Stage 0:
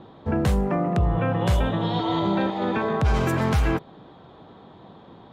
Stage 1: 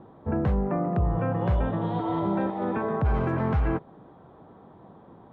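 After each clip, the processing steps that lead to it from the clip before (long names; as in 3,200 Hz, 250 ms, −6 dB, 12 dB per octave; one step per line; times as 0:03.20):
low-pass filter 1,500 Hz 12 dB per octave
level −3 dB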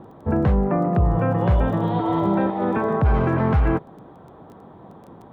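surface crackle 13 per second −44 dBFS
level +6 dB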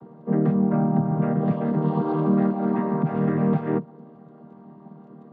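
channel vocoder with a chord as carrier major triad, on D#3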